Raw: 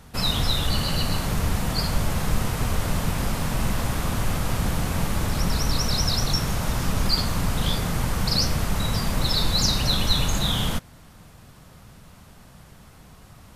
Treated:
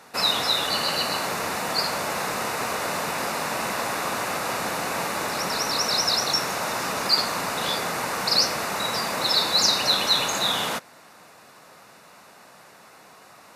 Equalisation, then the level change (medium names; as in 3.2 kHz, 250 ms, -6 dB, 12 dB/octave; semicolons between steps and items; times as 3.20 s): high-pass 460 Hz 12 dB/octave; treble shelf 6.8 kHz -7 dB; band-stop 3.2 kHz, Q 6.2; +6.0 dB